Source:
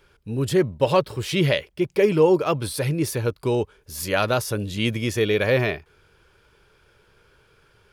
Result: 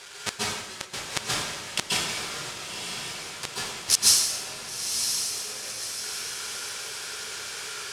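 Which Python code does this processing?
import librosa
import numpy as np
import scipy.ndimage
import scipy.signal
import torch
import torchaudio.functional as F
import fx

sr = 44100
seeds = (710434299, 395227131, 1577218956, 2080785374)

y = fx.halfwave_hold(x, sr)
y = fx.weighting(y, sr, curve='ITU-R 468')
y = fx.gate_flip(y, sr, shuts_db=-12.0, range_db=-40)
y = fx.echo_diffused(y, sr, ms=1014, feedback_pct=53, wet_db=-6)
y = fx.rev_plate(y, sr, seeds[0], rt60_s=1.1, hf_ratio=0.85, predelay_ms=120, drr_db=-5.5)
y = y * librosa.db_to_amplitude(7.5)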